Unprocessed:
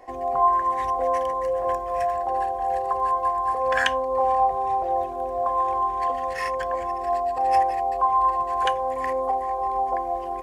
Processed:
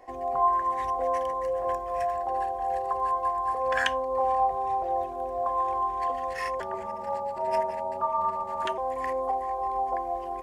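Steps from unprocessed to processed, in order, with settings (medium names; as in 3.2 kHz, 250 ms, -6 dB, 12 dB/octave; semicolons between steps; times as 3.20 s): 6.60–8.78 s: ring modulator 140 Hz; trim -4 dB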